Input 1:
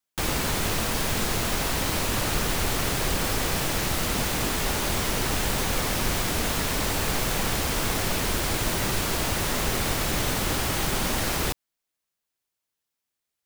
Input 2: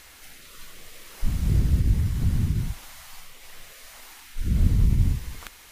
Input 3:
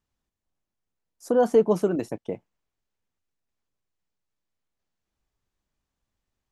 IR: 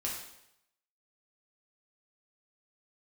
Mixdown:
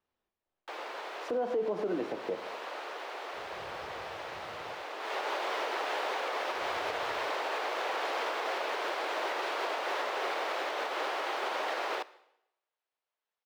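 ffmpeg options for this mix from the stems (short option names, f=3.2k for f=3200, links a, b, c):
-filter_complex "[0:a]highpass=f=350:w=0.5412,highpass=f=350:w=1.3066,equalizer=f=710:t=o:w=2.4:g=7.5,adelay=500,volume=-5.5dB,afade=t=in:st=4.98:d=0.29:silence=0.316228,asplit=2[a][b];[b]volume=-19dB[c];[1:a]highpass=100,adelay=2100,volume=-19dB[d];[2:a]equalizer=f=390:t=o:w=2.7:g=4.5,volume=-3dB,asplit=2[e][f];[f]volume=-6dB[g];[3:a]atrim=start_sample=2205[h];[c][g]amix=inputs=2:normalize=0[i];[i][h]afir=irnorm=-1:irlink=0[j];[a][d][e][j]amix=inputs=4:normalize=0,acrossover=split=340 4400:gain=0.2 1 0.0708[k][l][m];[k][l][m]amix=inputs=3:normalize=0,alimiter=limit=-24dB:level=0:latency=1:release=177"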